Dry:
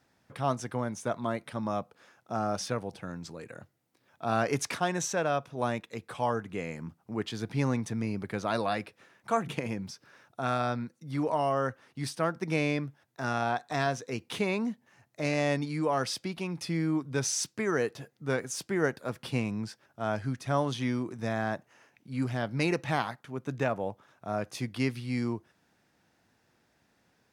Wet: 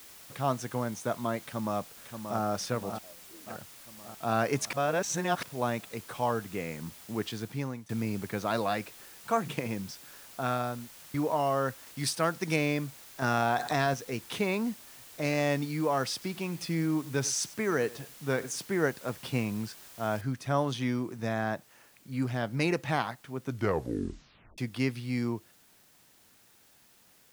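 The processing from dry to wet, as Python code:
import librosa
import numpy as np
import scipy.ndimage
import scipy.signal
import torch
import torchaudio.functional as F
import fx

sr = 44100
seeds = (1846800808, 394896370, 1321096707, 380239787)

y = fx.echo_throw(x, sr, start_s=1.39, length_s=1.01, ms=580, feedback_pct=60, wet_db=-7.5)
y = fx.bandpass_q(y, sr, hz=fx.line((2.98, 810.0), (3.46, 260.0)), q=13.0, at=(2.98, 3.46), fade=0.02)
y = fx.studio_fade_out(y, sr, start_s=10.41, length_s=0.73)
y = fx.high_shelf(y, sr, hz=2600.0, db=9.5, at=(11.85, 12.55), fade=0.02)
y = fx.env_flatten(y, sr, amount_pct=70, at=(13.22, 13.94))
y = fx.echo_single(y, sr, ms=97, db=-19.5, at=(16.12, 18.61))
y = fx.noise_floor_step(y, sr, seeds[0], at_s=20.21, before_db=-51, after_db=-62, tilt_db=0.0)
y = fx.edit(y, sr, fx.reverse_span(start_s=4.73, length_s=0.7),
    fx.fade_out_to(start_s=7.29, length_s=0.6, floor_db=-20.0),
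    fx.tape_stop(start_s=23.43, length_s=1.15), tone=tone)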